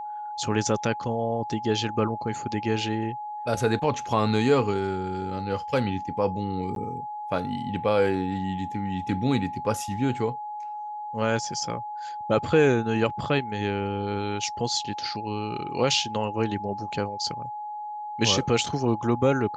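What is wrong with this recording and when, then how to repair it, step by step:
whine 840 Hz -32 dBFS
3.84 s: dropout 2.4 ms
6.75–6.76 s: dropout 12 ms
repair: band-stop 840 Hz, Q 30; interpolate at 3.84 s, 2.4 ms; interpolate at 6.75 s, 12 ms

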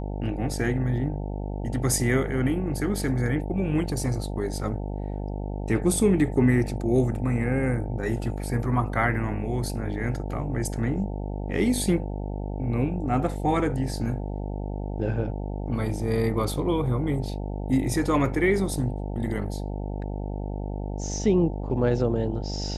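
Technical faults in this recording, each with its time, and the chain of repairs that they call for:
buzz 50 Hz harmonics 18 -31 dBFS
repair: de-hum 50 Hz, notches 18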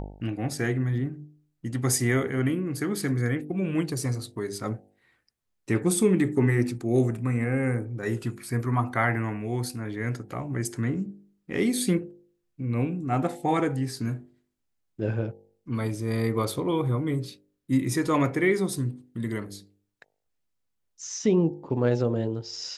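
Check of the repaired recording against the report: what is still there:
nothing left

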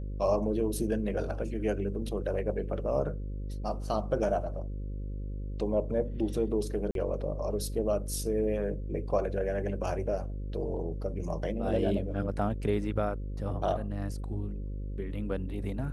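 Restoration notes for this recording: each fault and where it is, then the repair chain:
buzz 50 Hz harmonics 11 -36 dBFS
6.91–6.95 s: dropout 42 ms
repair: de-hum 50 Hz, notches 11; interpolate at 6.91 s, 42 ms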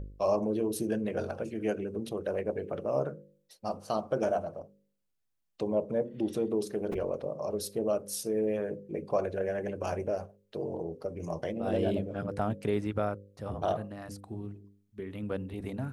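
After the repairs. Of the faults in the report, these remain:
nothing left

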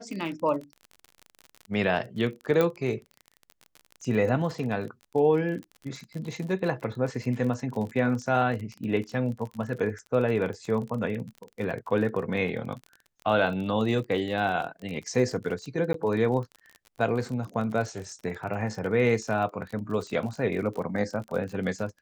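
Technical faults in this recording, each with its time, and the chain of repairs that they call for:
crackle 36 per s -34 dBFS
2.61 s: pop -12 dBFS
15.93–15.94 s: dropout 13 ms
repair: de-click; interpolate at 15.93 s, 13 ms

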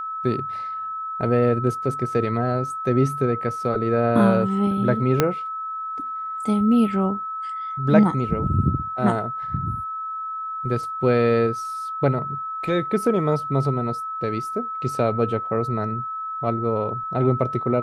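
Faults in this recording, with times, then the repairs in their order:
whine 1.3 kHz -27 dBFS
5.20 s: pop -3 dBFS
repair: de-click; band-stop 1.3 kHz, Q 30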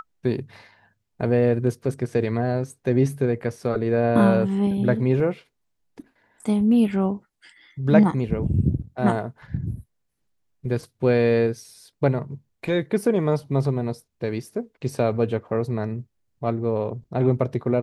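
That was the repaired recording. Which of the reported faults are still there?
5.20 s: pop

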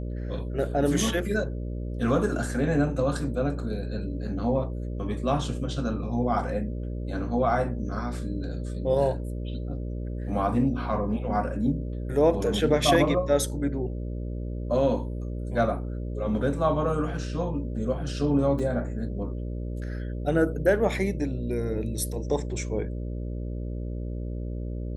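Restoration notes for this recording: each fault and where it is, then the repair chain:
buzz 60 Hz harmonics 10 -32 dBFS
18.59 s: dropout 4.4 ms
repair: de-hum 60 Hz, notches 10; interpolate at 18.59 s, 4.4 ms

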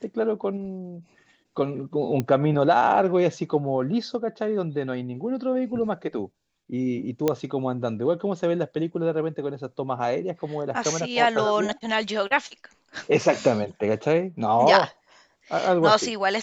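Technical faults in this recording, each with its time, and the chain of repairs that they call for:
2.20 s: pop -13 dBFS
7.28 s: pop -9 dBFS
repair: de-click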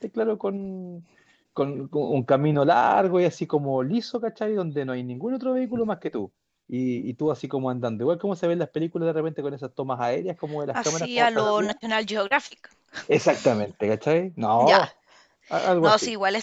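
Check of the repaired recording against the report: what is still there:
nothing left

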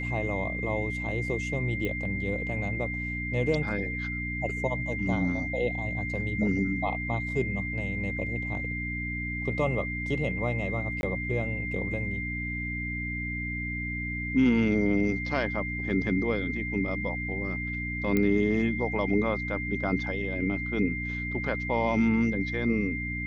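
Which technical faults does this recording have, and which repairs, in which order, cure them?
hum 60 Hz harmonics 5 -35 dBFS
whine 2.1 kHz -33 dBFS
1.85 s: pop -19 dBFS
11.01–11.03 s: dropout 21 ms
18.17 s: pop -14 dBFS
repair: de-click; de-hum 60 Hz, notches 5; band-stop 2.1 kHz, Q 30; interpolate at 11.01 s, 21 ms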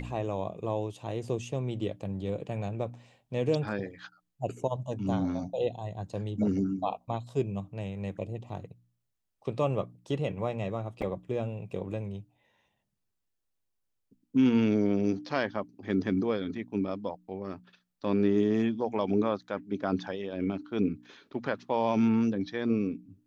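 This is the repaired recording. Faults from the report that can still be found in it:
18.17 s: pop

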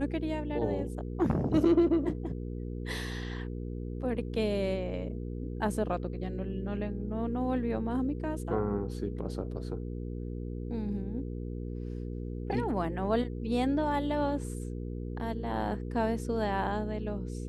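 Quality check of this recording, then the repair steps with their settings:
hum 60 Hz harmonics 8 -37 dBFS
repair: de-hum 60 Hz, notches 8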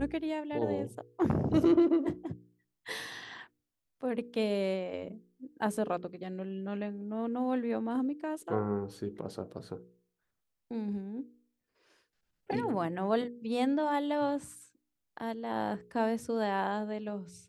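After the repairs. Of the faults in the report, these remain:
nothing left

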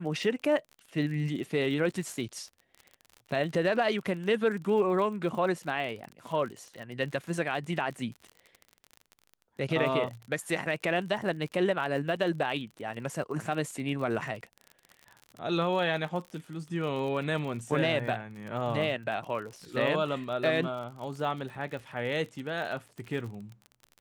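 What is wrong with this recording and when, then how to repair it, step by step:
crackle 43 per s -37 dBFS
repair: de-click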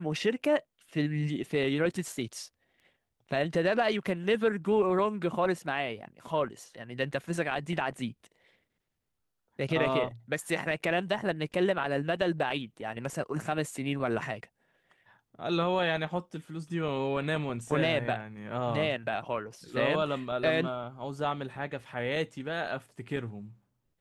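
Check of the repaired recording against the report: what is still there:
nothing left

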